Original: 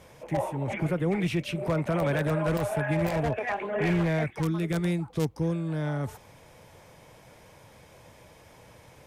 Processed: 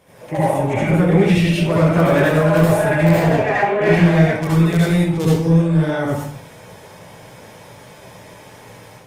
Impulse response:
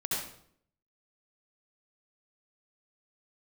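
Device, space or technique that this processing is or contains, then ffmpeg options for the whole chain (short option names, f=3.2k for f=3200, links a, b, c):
far-field microphone of a smart speaker: -filter_complex "[1:a]atrim=start_sample=2205[a];[0:a][a]afir=irnorm=-1:irlink=0,highpass=f=130:p=1,dynaudnorm=f=140:g=3:m=6dB,volume=1.5dB" -ar 48000 -c:a libopus -b:a 32k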